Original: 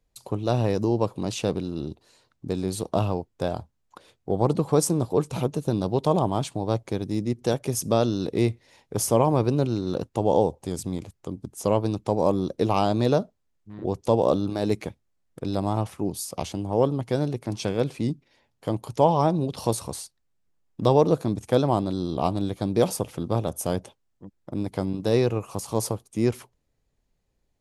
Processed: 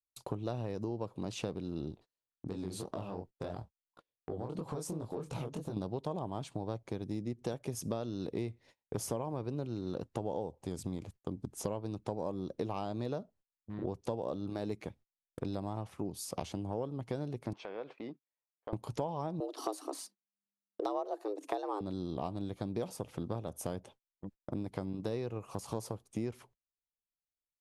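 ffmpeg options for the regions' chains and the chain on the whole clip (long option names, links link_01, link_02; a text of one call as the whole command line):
ffmpeg -i in.wav -filter_complex "[0:a]asettb=1/sr,asplit=3[link_01][link_02][link_03];[link_01]atrim=end=1.914[link_04];[link_02]atrim=start=1.91:end=5.77,asetpts=PTS-STARTPTS,afade=type=in:duration=0.004:curve=qsin,afade=type=out:start_time=3.856:duration=0.004:curve=qsin,acompressor=threshold=-29dB:ratio=5:attack=3.2:release=140:knee=1:detection=peak,flanger=delay=18:depth=7.7:speed=2.9[link_05];[link_03]atrim=start=5.766[link_06];[link_04][link_05]acrossfade=duration=0.004:curve1=hsin:curve2=qsin[link_07];[link_07][link_06]acrossfade=duration=0.004:curve1=qsin:curve2=hsin,asettb=1/sr,asplit=3[link_08][link_09][link_10];[link_08]atrim=end=17.534[link_11];[link_09]atrim=start=17.53:end=18.73,asetpts=PTS-STARTPTS,afade=type=in:duration=0.004:curve=qsin,afade=type=out:start_time=1.196:duration=0.004:curve=qsin,highpass=540,lowpass=2200,acompressor=threshold=-38dB:ratio=3:attack=3.2:release=140:knee=1:detection=peak[link_12];[link_10]atrim=start=18.726[link_13];[link_11][link_12]acrossfade=duration=0.004:curve1=hsin:curve2=qsin[link_14];[link_14][link_13]acrossfade=duration=0.004:curve1=qsin:curve2=hsin,asettb=1/sr,asplit=3[link_15][link_16][link_17];[link_15]atrim=end=19.404[link_18];[link_16]atrim=start=19.4:end=21.81,asetpts=PTS-STARTPTS,afade=type=in:duration=0.004:curve=qsin,afade=type=out:start_time=2.406:duration=0.004:curve=qsin,afreqshift=200,bandreject=frequency=1400:width=12,aphaser=in_gain=1:out_gain=1:delay=2.7:decay=0.28:speed=1.9:type=sinusoidal[link_19];[link_17]atrim=start=21.806[link_20];[link_18][link_19]acrossfade=duration=0.004:curve1=hsin:curve2=qsin[link_21];[link_21][link_20]acrossfade=duration=0.004:curve1=qsin:curve2=hsin,agate=range=-35dB:threshold=-47dB:ratio=16:detection=peak,highshelf=frequency=5000:gain=-6.5,acompressor=threshold=-33dB:ratio=6,volume=-1dB" out.wav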